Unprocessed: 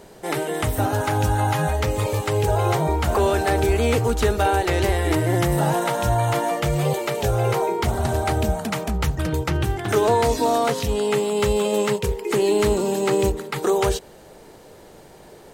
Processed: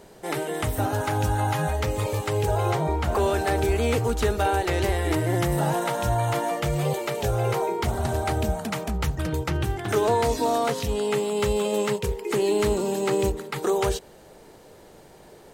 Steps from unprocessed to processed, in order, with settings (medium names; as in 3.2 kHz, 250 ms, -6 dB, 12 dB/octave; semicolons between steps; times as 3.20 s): 2.70–3.14 s: treble shelf 8.9 kHz -> 5.3 kHz -8 dB; trim -3.5 dB